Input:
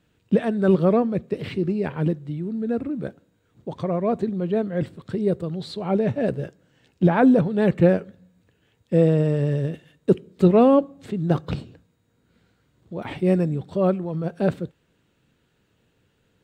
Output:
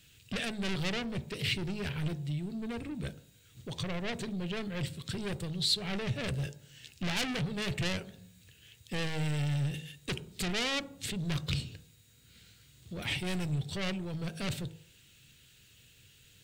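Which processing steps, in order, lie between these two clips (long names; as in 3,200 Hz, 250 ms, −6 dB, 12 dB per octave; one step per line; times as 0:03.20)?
hard clipping −18.5 dBFS, distortion −8 dB
on a send at −17 dB: convolution reverb RT60 0.50 s, pre-delay 3 ms
on the sum: soft clipping −25 dBFS, distortion −11 dB
high-shelf EQ 4,000 Hz +8.5 dB
hum removal 53.43 Hz, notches 18
in parallel at −0.5 dB: downward compressor, threshold −42 dBFS, peak gain reduction 16 dB
on the sum: drawn EQ curve 110 Hz 0 dB, 220 Hz −10 dB, 990 Hz −13 dB, 2,700 Hz +4 dB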